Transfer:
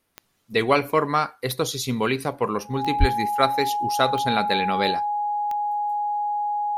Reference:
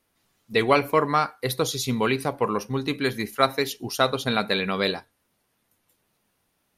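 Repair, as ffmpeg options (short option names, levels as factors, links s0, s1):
-filter_complex "[0:a]adeclick=t=4,bandreject=f=830:w=30,asplit=3[s0][s1][s2];[s0]afade=t=out:st=2.99:d=0.02[s3];[s1]highpass=f=140:w=0.5412,highpass=f=140:w=1.3066,afade=t=in:st=2.99:d=0.02,afade=t=out:st=3.11:d=0.02[s4];[s2]afade=t=in:st=3.11:d=0.02[s5];[s3][s4][s5]amix=inputs=3:normalize=0"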